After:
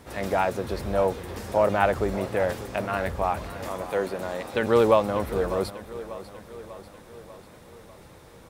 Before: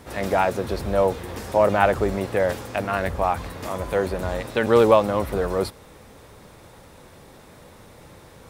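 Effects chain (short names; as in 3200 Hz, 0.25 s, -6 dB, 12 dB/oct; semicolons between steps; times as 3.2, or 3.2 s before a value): 3.68–4.54 HPF 190 Hz 12 dB/oct; on a send: feedback echo 0.594 s, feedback 57%, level -15 dB; on the sum: gain -3.5 dB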